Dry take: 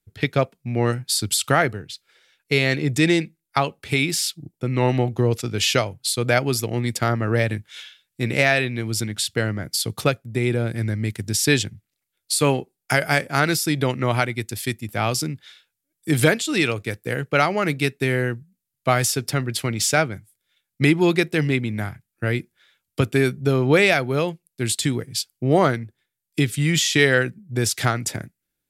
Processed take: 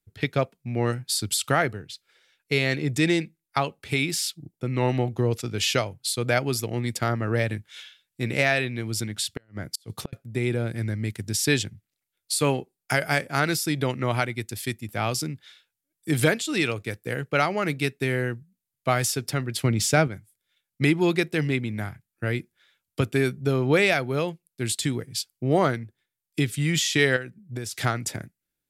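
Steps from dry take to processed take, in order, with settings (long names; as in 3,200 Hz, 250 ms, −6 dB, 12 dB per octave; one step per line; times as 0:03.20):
0:09.35–0:10.13: gate with flip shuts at −12 dBFS, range −37 dB
0:19.63–0:20.08: low-shelf EQ 470 Hz +8 dB
0:27.16–0:27.73: downward compressor 5 to 1, threshold −26 dBFS, peak gain reduction 11 dB
level −4 dB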